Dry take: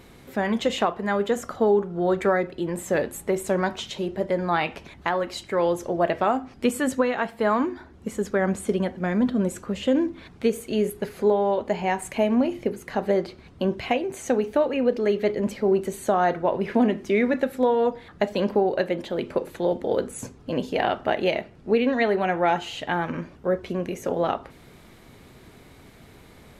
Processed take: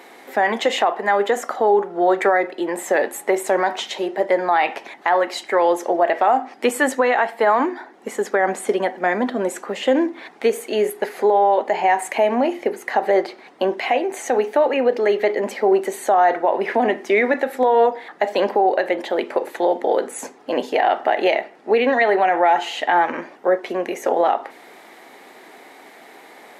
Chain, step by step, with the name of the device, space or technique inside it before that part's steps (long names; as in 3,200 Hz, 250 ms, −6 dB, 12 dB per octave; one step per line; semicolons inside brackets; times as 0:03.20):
laptop speaker (high-pass filter 290 Hz 24 dB per octave; parametric band 790 Hz +10 dB 0.59 octaves; parametric band 1,900 Hz +8 dB 0.45 octaves; brickwall limiter −12.5 dBFS, peak gain reduction 9 dB)
level +5 dB